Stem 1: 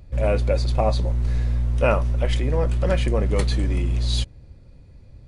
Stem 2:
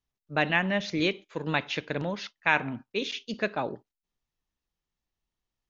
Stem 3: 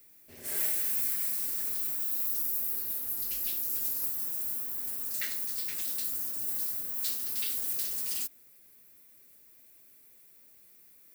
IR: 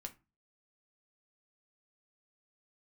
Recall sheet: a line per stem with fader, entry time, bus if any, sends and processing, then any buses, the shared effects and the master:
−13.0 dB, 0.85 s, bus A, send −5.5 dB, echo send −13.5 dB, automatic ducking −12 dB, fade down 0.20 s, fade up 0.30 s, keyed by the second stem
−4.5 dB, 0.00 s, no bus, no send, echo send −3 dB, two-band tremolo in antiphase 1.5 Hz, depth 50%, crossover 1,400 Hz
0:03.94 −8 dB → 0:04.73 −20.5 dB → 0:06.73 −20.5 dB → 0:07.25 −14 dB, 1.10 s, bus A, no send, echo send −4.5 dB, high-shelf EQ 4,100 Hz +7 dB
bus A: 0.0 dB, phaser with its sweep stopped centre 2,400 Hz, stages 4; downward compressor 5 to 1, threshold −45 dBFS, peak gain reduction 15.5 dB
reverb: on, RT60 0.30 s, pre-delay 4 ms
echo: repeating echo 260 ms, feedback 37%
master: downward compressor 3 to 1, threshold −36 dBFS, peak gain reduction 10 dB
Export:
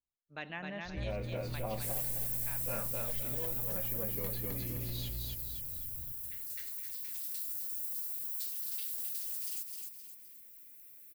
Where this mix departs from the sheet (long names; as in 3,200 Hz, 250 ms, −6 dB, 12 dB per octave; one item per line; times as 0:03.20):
stem 1 −13.0 dB → −1.5 dB
stem 2 −4.5 dB → −13.5 dB
stem 3 −8.0 dB → +1.5 dB